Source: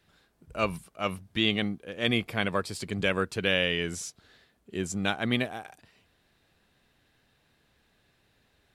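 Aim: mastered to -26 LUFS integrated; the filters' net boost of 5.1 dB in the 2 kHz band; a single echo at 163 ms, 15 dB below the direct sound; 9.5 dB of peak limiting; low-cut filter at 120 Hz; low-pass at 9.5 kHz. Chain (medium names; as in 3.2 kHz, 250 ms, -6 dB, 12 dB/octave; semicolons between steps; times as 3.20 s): high-pass 120 Hz; low-pass 9.5 kHz; peaking EQ 2 kHz +6.5 dB; peak limiter -16 dBFS; delay 163 ms -15 dB; trim +5.5 dB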